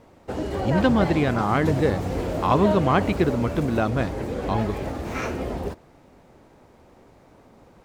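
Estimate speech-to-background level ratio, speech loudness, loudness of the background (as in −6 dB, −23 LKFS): 5.0 dB, −23.5 LKFS, −28.5 LKFS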